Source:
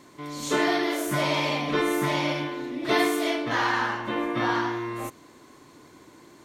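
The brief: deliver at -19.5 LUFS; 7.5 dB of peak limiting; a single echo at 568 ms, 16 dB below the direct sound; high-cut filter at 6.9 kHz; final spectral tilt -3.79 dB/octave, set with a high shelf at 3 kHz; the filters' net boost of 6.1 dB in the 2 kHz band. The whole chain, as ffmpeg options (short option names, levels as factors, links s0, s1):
-af "lowpass=6900,equalizer=f=2000:t=o:g=6,highshelf=f=3000:g=4,alimiter=limit=0.178:level=0:latency=1,aecho=1:1:568:0.158,volume=1.88"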